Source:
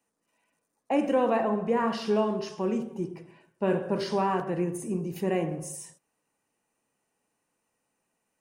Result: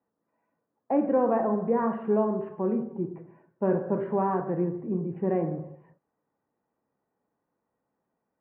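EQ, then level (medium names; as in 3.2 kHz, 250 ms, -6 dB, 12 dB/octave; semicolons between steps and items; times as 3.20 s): high-pass 41 Hz; Bessel low-pass 1.1 kHz, order 8; +1.5 dB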